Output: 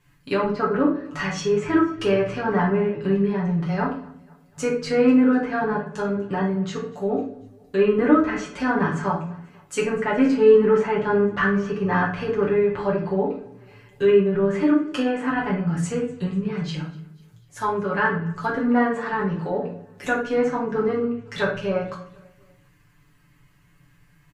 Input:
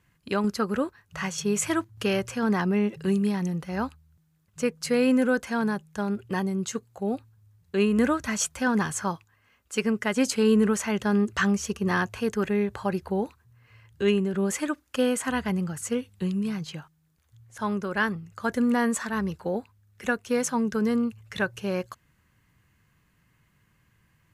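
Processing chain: treble ducked by the level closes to 1800 Hz, closed at -24 dBFS; comb 6.9 ms, depth 79%; on a send: feedback echo 0.246 s, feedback 52%, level -24 dB; on the sum: shoebox room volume 59 m³, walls mixed, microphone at 0.9 m

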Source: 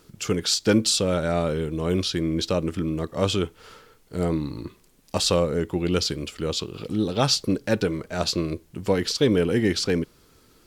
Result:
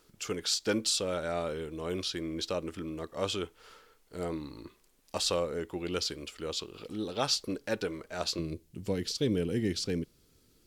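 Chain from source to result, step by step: bell 130 Hz -10 dB 2 oct, from 8.39 s 1100 Hz; gain -7 dB

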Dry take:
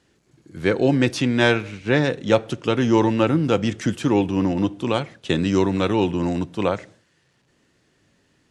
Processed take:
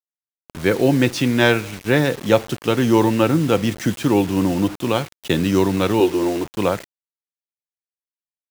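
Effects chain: bit-crush 6-bit; 6–6.45 resonant low shelf 270 Hz -7.5 dB, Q 3; gain +2 dB

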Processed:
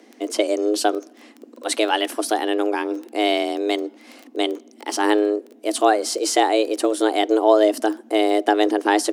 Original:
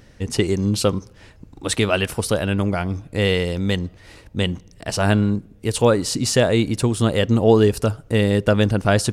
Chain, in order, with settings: crackle 11/s -27 dBFS; frequency shift +210 Hz; gain -1 dB

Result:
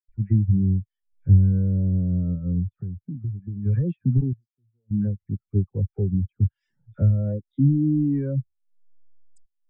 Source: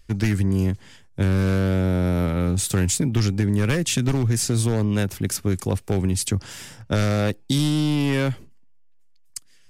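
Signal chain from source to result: reverb removal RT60 0.5 s; 2.53–3.57 compressor 12:1, threshold -22 dBFS, peak gain reduction 7 dB; treble ducked by the level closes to 2100 Hz, closed at -23.5 dBFS; upward compressor, threshold -25 dBFS; dispersion lows, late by 90 ms, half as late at 1500 Hz; 4.33–4.91 pre-emphasis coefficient 0.9; spectral expander 2.5:1; gain +4.5 dB

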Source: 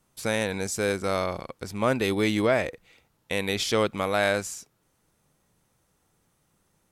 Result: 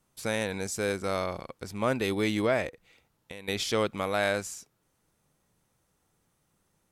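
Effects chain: 2.68–3.48 compressor 4:1, threshold -39 dBFS, peak gain reduction 14 dB; gain -3.5 dB

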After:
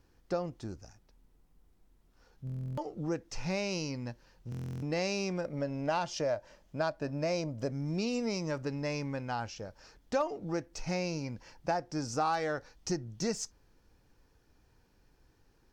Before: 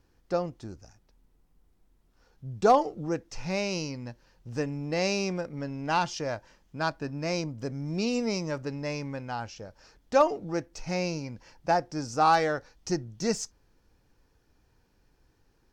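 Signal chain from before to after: 5.44–7.7 bell 600 Hz +11.5 dB 0.34 oct; compressor 3:1, threshold -30 dBFS, peak gain reduction 11 dB; stuck buffer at 2.45/4.5, samples 1024, times 13

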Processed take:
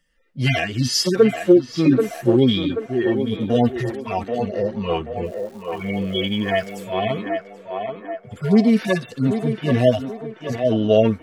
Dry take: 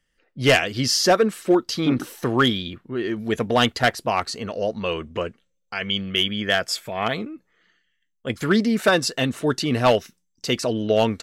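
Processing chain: median-filter separation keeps harmonic; 5.24–6.83 crackle 530/s -45 dBFS; on a send: narrowing echo 0.783 s, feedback 61%, band-pass 790 Hz, level -3.5 dB; on the sum: gain +5.5 dB

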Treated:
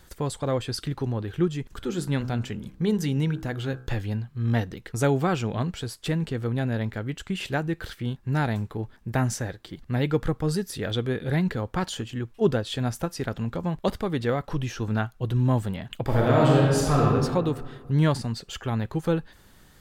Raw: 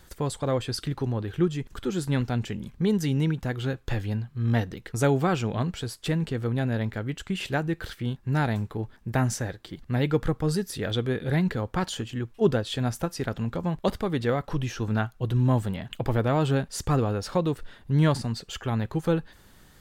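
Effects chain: 1.76–3.87 de-hum 63.68 Hz, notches 26; 16.03–17.03 reverb throw, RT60 1.7 s, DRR -4 dB

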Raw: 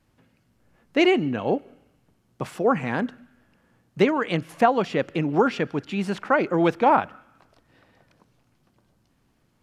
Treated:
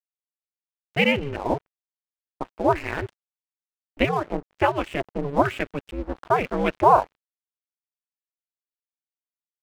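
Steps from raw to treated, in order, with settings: LFO low-pass square 1.1 Hz 880–2600 Hz; crossover distortion -37 dBFS; ring modulator 140 Hz

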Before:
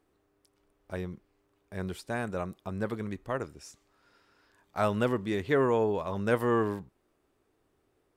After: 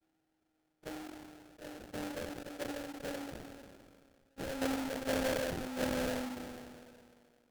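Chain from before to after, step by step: vocoder on a gliding note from D4, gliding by -5 st; low shelf 380 Hz -8 dB; in parallel at -2.5 dB: compressor, threshold -38 dBFS, peak gain reduction 13 dB; on the sum: sample-rate reducer 1000 Hz, jitter 20%; speed mistake 44.1 kHz file played as 48 kHz; sustainer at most 27 dB/s; gain -6.5 dB

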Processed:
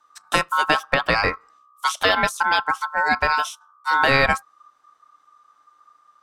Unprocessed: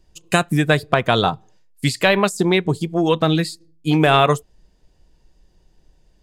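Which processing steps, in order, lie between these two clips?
frequency shift -32 Hz; ring modulator 1200 Hz

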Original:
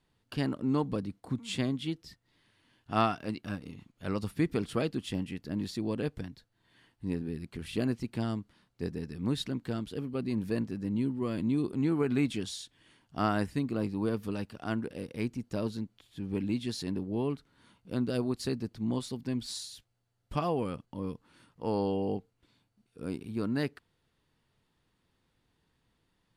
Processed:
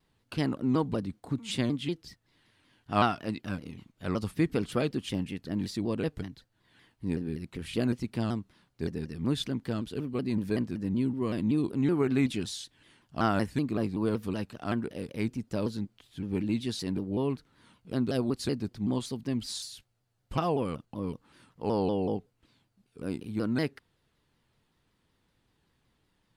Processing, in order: shaped vibrato saw down 5.3 Hz, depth 160 cents; gain +2 dB

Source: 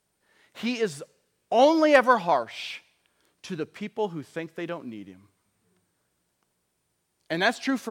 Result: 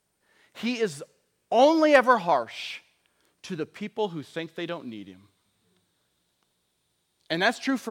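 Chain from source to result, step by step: 3.98–7.35 bell 3700 Hz +12 dB 0.45 oct

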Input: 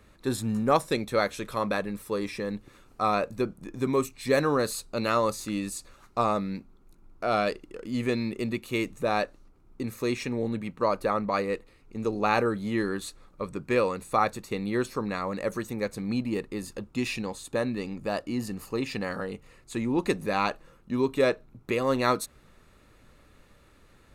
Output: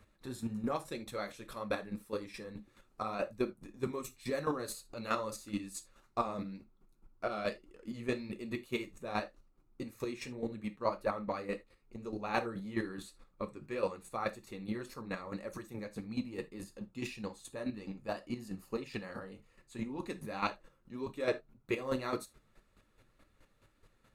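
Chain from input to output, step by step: chopper 4.7 Hz, depth 65%, duty 20%; non-linear reverb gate 0.1 s falling, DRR 9 dB; flange 1.8 Hz, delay 0.7 ms, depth 8.1 ms, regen -36%; gain -2 dB

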